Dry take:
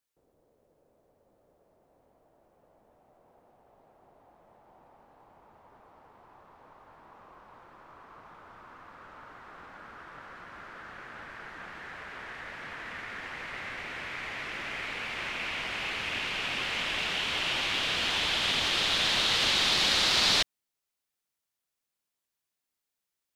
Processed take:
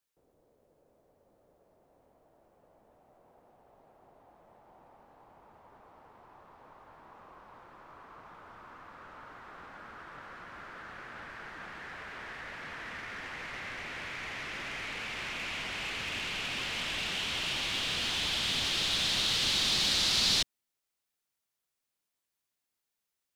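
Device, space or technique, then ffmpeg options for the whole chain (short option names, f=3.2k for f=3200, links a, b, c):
one-band saturation: -filter_complex "[0:a]acrossover=split=280|3300[a][b][c];[b]asoftclip=type=tanh:threshold=-36.5dB[d];[a][d][c]amix=inputs=3:normalize=0"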